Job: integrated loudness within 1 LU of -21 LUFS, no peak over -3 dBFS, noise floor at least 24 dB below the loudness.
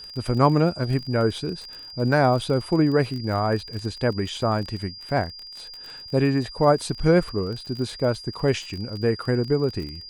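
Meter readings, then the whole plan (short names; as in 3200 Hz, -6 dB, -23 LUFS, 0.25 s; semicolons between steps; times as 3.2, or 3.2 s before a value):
ticks 35/s; steady tone 4800 Hz; tone level -38 dBFS; loudness -23.5 LUFS; peak -4.5 dBFS; loudness target -21.0 LUFS
-> de-click; notch 4800 Hz, Q 30; gain +2.5 dB; limiter -3 dBFS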